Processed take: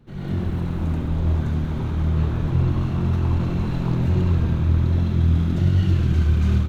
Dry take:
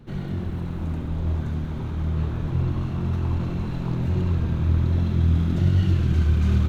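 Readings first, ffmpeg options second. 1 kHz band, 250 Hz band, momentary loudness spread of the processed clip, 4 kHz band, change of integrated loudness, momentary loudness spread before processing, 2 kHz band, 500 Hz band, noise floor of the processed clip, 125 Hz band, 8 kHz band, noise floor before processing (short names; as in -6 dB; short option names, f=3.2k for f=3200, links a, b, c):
+3.5 dB, +3.0 dB, 6 LU, +2.5 dB, +2.5 dB, 9 LU, +2.5 dB, +3.0 dB, -27 dBFS, +2.5 dB, n/a, -30 dBFS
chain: -af "dynaudnorm=f=150:g=3:m=10.5dB,volume=-6dB"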